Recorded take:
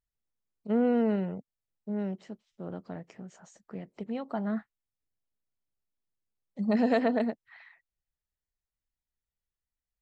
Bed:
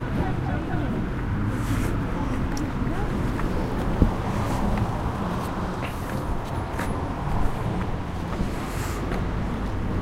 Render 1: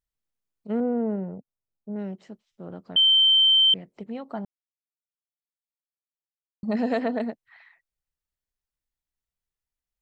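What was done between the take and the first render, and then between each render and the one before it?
0.80–1.96 s: low-pass 1 kHz; 2.96–3.74 s: bleep 3.11 kHz -14.5 dBFS; 4.45–6.63 s: mute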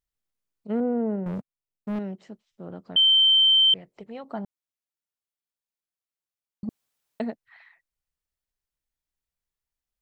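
1.26–1.99 s: waveshaping leveller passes 3; 3.38–4.24 s: peaking EQ 230 Hz -7.5 dB 1 oct; 6.69–7.20 s: room tone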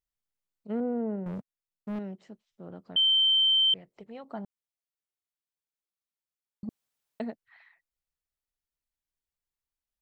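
trim -5 dB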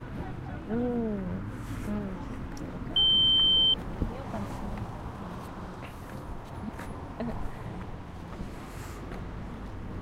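add bed -12 dB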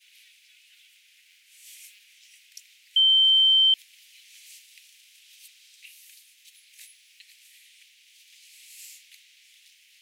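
steep high-pass 2.3 kHz 48 dB/octave; treble shelf 3.4 kHz +10 dB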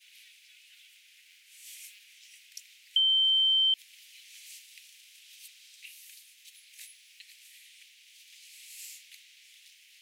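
compression, threshold -23 dBFS, peak gain reduction 6 dB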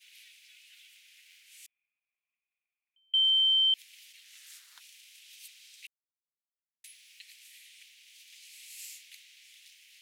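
1.66–3.14 s: cascade formant filter a; 4.12–4.79 s: ring modulator 190 Hz -> 1.1 kHz; 5.87–6.84 s: mute

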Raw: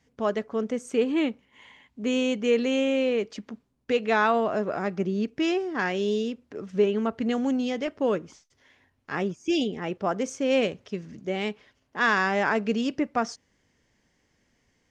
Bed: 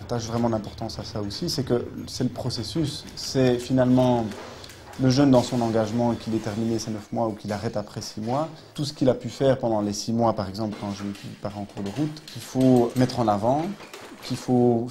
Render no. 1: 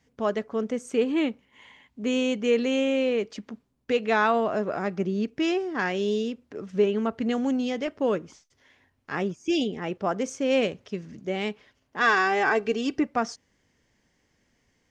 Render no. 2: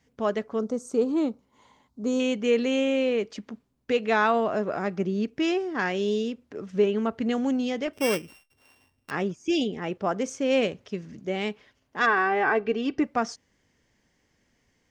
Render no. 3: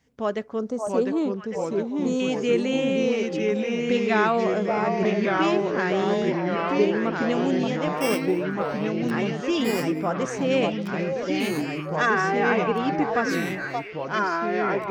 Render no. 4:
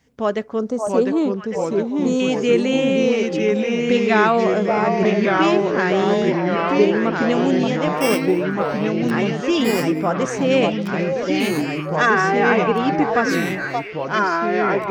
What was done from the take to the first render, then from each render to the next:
12.01–13.04 s: comb 2.6 ms, depth 67%
0.59–2.20 s: high-order bell 2.3 kHz -14.5 dB 1.2 oct; 7.93–9.11 s: sorted samples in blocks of 16 samples; 12.05–12.97 s: low-pass 1.8 kHz -> 3.6 kHz
repeats whose band climbs or falls 577 ms, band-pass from 750 Hz, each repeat 1.4 oct, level -2 dB; ever faster or slower copies 656 ms, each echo -2 st, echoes 3
trim +5.5 dB

